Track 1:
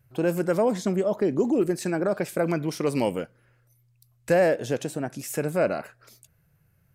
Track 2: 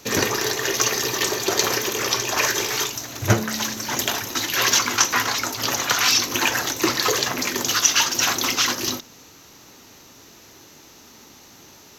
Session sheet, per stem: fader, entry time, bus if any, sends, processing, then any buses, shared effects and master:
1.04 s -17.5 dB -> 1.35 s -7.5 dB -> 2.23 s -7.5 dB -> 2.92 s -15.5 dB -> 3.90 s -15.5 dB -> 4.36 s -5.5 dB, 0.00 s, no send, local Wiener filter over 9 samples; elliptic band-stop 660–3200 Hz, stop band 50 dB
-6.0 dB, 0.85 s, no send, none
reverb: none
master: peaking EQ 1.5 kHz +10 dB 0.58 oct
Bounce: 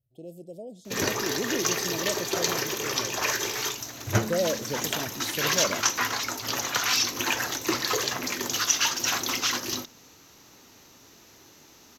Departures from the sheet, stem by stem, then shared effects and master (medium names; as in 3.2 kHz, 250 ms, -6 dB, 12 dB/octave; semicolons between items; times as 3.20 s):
stem 1: missing local Wiener filter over 9 samples; master: missing peaking EQ 1.5 kHz +10 dB 0.58 oct